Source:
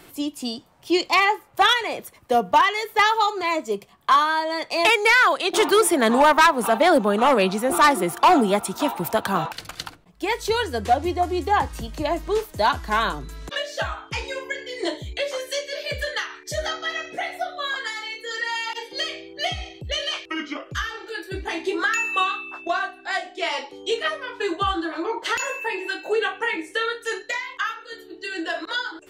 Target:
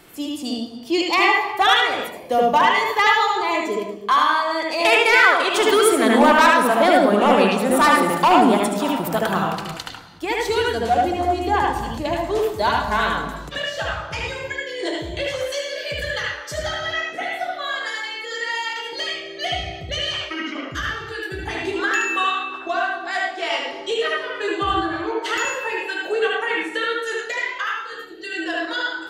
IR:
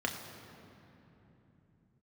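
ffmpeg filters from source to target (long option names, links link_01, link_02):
-filter_complex "[0:a]asplit=2[link_01][link_02];[1:a]atrim=start_sample=2205,afade=type=out:start_time=0.36:duration=0.01,atrim=end_sample=16317,adelay=74[link_03];[link_02][link_03]afir=irnorm=-1:irlink=0,volume=-4.5dB[link_04];[link_01][link_04]amix=inputs=2:normalize=0,volume=-1dB"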